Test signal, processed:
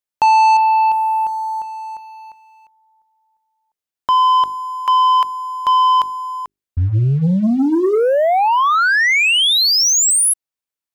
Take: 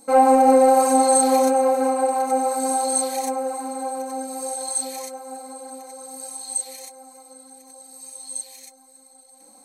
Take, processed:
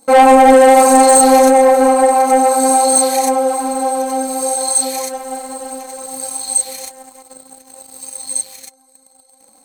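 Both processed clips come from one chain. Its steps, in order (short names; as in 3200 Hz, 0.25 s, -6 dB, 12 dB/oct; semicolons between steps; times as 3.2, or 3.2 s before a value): notches 50/100/150/200/250/300/350/400 Hz; sample leveller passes 2; gain +3.5 dB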